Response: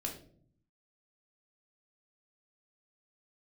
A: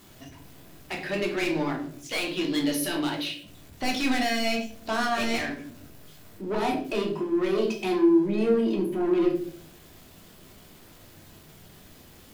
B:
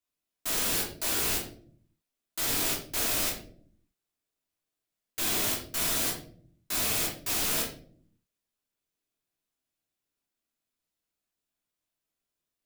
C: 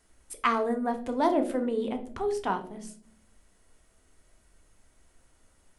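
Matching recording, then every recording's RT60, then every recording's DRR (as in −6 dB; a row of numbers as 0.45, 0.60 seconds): A; 0.55, 0.55, 0.55 seconds; 0.0, −4.5, 6.0 decibels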